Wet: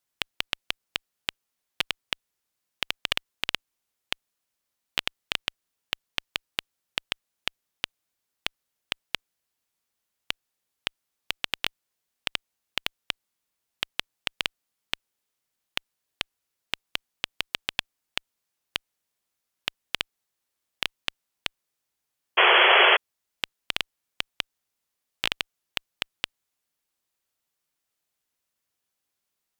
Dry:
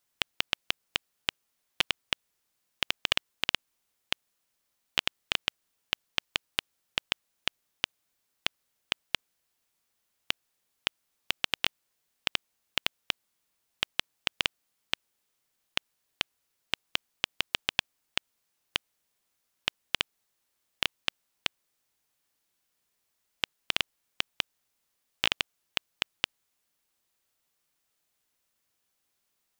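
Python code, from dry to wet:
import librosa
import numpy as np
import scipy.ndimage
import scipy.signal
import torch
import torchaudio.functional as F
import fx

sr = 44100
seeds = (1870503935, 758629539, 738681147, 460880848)

y = fx.cheby_harmonics(x, sr, harmonics=(7,), levels_db=(-26,), full_scale_db=-4.0)
y = fx.spec_paint(y, sr, seeds[0], shape='noise', start_s=22.37, length_s=0.6, low_hz=350.0, high_hz=3400.0, level_db=-17.0)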